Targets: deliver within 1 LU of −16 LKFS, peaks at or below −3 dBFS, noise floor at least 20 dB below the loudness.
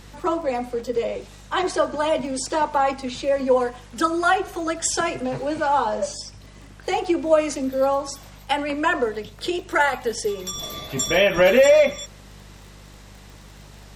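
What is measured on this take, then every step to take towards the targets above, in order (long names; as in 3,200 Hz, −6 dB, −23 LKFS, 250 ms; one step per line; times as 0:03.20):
crackle rate 26 per second; mains hum 50 Hz; hum harmonics up to 200 Hz; level of the hum −43 dBFS; integrated loudness −22.0 LKFS; sample peak −5.0 dBFS; target loudness −16.0 LKFS
→ click removal
hum removal 50 Hz, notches 4
level +6 dB
brickwall limiter −3 dBFS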